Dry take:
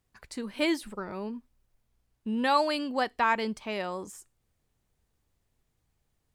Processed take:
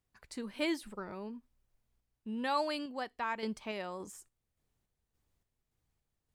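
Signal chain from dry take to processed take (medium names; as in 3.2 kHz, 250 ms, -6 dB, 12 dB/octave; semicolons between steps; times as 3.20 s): random-step tremolo; trim -4 dB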